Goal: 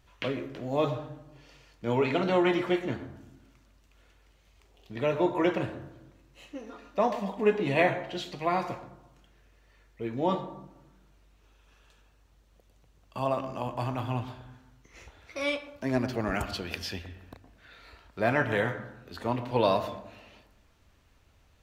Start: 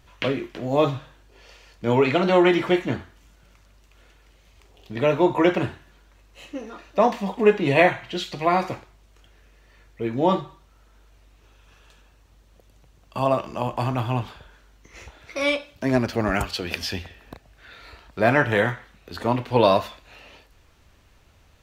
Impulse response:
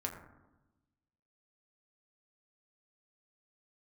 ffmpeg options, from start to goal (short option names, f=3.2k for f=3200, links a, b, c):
-filter_complex "[0:a]asplit=2[a][b];[1:a]atrim=start_sample=2205,lowpass=1.9k,adelay=114[c];[b][c]afir=irnorm=-1:irlink=0,volume=-12dB[d];[a][d]amix=inputs=2:normalize=0,volume=-7.5dB"